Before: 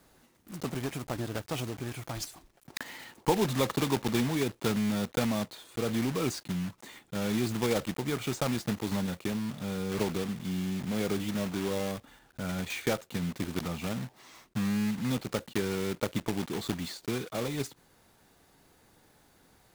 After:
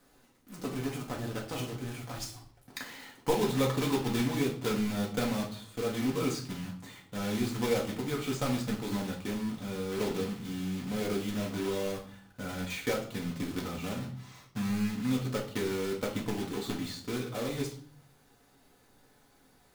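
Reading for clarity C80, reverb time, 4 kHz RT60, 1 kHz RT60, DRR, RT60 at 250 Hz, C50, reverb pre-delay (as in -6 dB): 13.5 dB, 0.50 s, 0.45 s, 0.50 s, -1.0 dB, 0.70 s, 9.0 dB, 4 ms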